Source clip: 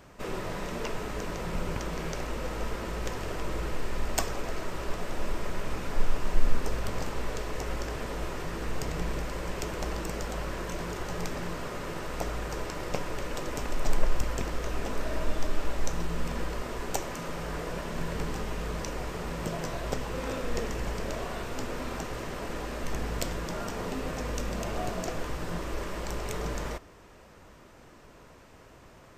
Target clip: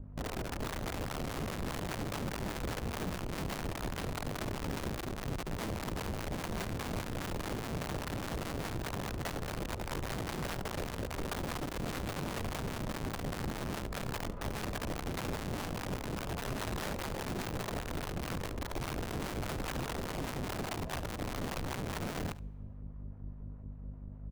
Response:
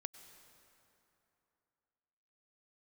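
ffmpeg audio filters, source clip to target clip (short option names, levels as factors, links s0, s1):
-filter_complex "[0:a]lowpass=f=8400:w=0.5412,lowpass=f=8400:w=1.3066,lowshelf=f=110:t=q:w=1.5:g=9.5,asplit=2[s0][s1];[s1]acompressor=threshold=0.0355:ratio=6,volume=0.891[s2];[s0][s2]amix=inputs=2:normalize=0,aeval=exprs='val(0)+0.0251*(sin(2*PI*50*n/s)+sin(2*PI*2*50*n/s)/2+sin(2*PI*3*50*n/s)/3+sin(2*PI*4*50*n/s)/4+sin(2*PI*5*50*n/s)/5)':c=same,asoftclip=type=hard:threshold=0.447,adynamicsmooth=sensitivity=0.5:basefreq=730,flanger=delay=9.9:depth=5.2:regen=-72:speed=1.8:shape=triangular,aeval=exprs='(mod(20*val(0)+1,2)-1)/20':c=same,atempo=1.2,acrossover=split=670[s3][s4];[s3]aeval=exprs='val(0)*(1-0.5/2+0.5/2*cos(2*PI*4.9*n/s))':c=same[s5];[s4]aeval=exprs='val(0)*(1-0.5/2-0.5/2*cos(2*PI*4.9*n/s))':c=same[s6];[s5][s6]amix=inputs=2:normalize=0,aecho=1:1:72:0.141,asplit=2[s7][s8];[1:a]atrim=start_sample=2205,asetrate=79380,aresample=44100[s9];[s8][s9]afir=irnorm=-1:irlink=0,volume=0.335[s10];[s7][s10]amix=inputs=2:normalize=0,volume=0.562"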